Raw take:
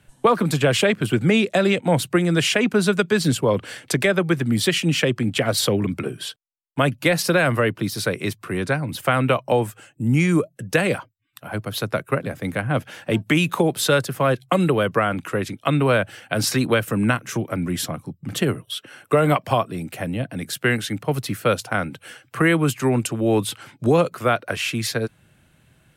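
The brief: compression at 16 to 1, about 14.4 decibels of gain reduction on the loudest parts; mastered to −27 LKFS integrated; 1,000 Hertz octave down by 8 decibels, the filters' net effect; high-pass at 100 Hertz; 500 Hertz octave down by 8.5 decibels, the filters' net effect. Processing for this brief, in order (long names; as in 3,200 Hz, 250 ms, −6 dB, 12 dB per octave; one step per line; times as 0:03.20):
high-pass filter 100 Hz
parametric band 500 Hz −8.5 dB
parametric band 1,000 Hz −9 dB
downward compressor 16 to 1, threshold −31 dBFS
level +9 dB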